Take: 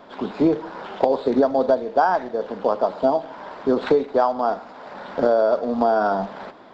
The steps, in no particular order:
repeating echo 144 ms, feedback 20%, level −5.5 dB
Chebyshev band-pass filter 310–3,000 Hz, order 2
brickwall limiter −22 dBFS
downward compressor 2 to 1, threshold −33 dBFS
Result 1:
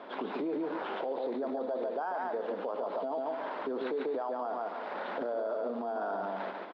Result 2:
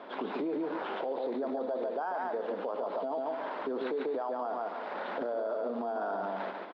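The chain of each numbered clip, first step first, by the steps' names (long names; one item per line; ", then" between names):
repeating echo, then brickwall limiter, then downward compressor, then Chebyshev band-pass filter
repeating echo, then brickwall limiter, then Chebyshev band-pass filter, then downward compressor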